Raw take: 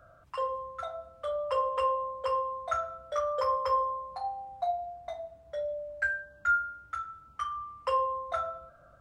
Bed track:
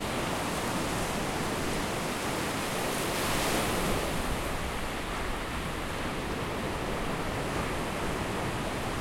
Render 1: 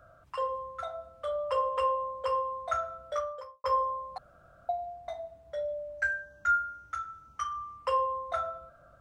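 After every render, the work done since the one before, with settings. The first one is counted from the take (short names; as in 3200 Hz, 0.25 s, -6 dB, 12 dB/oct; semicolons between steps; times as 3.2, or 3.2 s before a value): 3.14–3.64 fade out quadratic; 4.18–4.69 room tone; 5.98–7.77 bell 6000 Hz +11 dB 0.22 oct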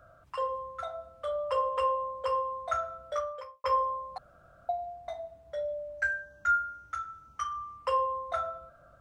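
3.34–3.96 bell 2400 Hz +11 dB -> +4 dB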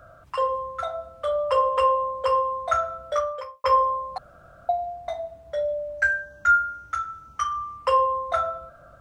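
gain +8 dB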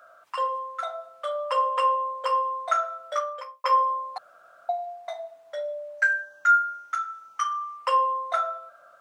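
HPF 760 Hz 12 dB/oct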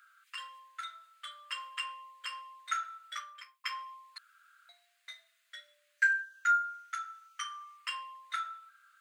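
inverse Chebyshev high-pass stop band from 840 Hz, stop band 40 dB; bell 5600 Hz -6.5 dB 0.26 oct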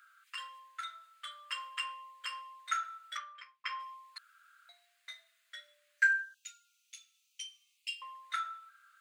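3.17–3.8 Bessel low-pass 3500 Hz; 6.34–8.02 Chebyshev high-pass 2500 Hz, order 5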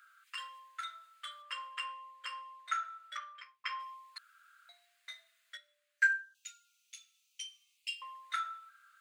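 1.42–3.22 tilt -2 dB/oct; 5.57–6.35 upward expander, over -39 dBFS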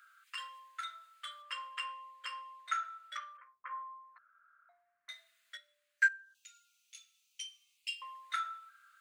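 3.37–5.09 LPF 1400 Hz 24 dB/oct; 6.08–6.95 compressor 2:1, threshold -56 dBFS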